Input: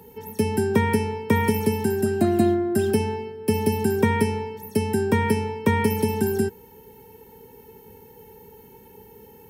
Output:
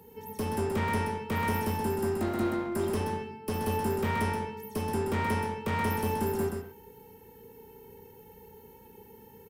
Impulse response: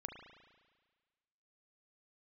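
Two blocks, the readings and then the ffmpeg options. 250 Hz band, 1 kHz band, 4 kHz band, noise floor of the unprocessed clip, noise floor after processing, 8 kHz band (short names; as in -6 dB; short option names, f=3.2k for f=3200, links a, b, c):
-9.5 dB, -3.5 dB, -6.5 dB, -49 dBFS, -53 dBFS, -7.5 dB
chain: -filter_complex "[0:a]volume=21dB,asoftclip=hard,volume=-21dB,aecho=1:1:128:0.531[a];[1:a]atrim=start_sample=2205,atrim=end_sample=6174[b];[a][b]afir=irnorm=-1:irlink=0,volume=-1.5dB"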